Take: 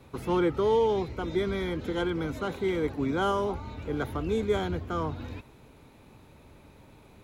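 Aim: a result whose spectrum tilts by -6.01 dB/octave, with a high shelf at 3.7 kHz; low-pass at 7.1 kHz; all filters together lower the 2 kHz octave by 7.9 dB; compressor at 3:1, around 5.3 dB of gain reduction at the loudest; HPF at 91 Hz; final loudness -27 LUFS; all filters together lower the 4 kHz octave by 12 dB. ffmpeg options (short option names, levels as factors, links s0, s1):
-af "highpass=91,lowpass=7100,equalizer=f=2000:t=o:g=-8,highshelf=f=3700:g=-7.5,equalizer=f=4000:t=o:g=-8,acompressor=threshold=0.0398:ratio=3,volume=2"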